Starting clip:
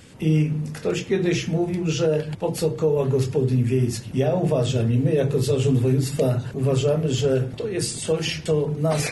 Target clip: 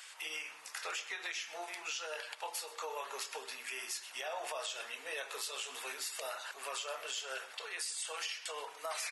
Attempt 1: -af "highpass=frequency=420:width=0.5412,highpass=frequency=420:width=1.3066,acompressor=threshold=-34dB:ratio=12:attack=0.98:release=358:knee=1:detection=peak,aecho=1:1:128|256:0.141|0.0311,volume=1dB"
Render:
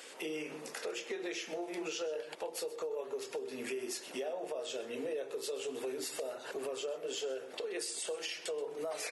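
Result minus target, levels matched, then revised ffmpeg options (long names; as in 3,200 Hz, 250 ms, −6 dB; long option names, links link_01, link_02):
500 Hz band +8.5 dB
-af "highpass=frequency=940:width=0.5412,highpass=frequency=940:width=1.3066,acompressor=threshold=-34dB:ratio=12:attack=0.98:release=358:knee=1:detection=peak,aecho=1:1:128|256:0.141|0.0311,volume=1dB"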